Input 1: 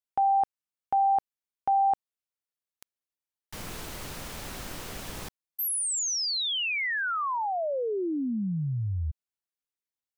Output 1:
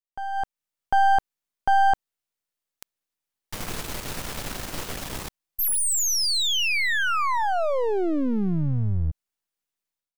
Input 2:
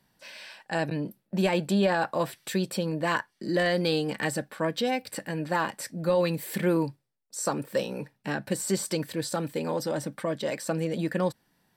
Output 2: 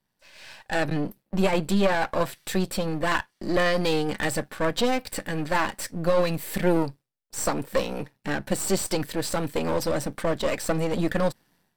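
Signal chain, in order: partial rectifier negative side -12 dB; level rider gain up to 16.5 dB; trim -7.5 dB

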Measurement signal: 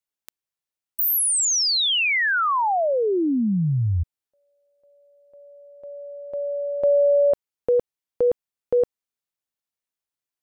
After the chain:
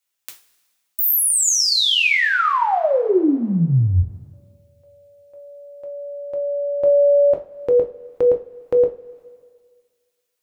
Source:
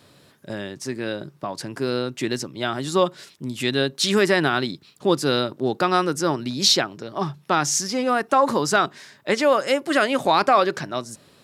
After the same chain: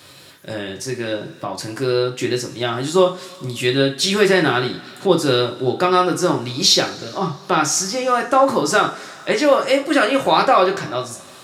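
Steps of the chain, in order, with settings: two-slope reverb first 0.3 s, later 1.8 s, from -20 dB, DRR 1 dB; tape noise reduction on one side only encoder only; trim +1 dB

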